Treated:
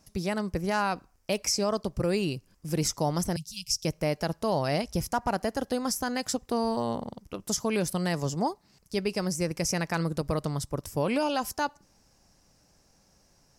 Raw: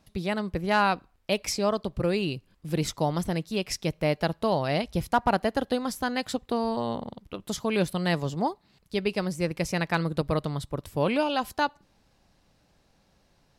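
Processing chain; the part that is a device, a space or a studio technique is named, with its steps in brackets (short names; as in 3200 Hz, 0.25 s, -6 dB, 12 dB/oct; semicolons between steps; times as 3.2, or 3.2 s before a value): 3.36–3.85 inverse Chebyshev band-stop 260–1700 Hz, stop band 40 dB; over-bright horn tweeter (resonant high shelf 4600 Hz +6 dB, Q 3; limiter -17 dBFS, peak gain reduction 8 dB)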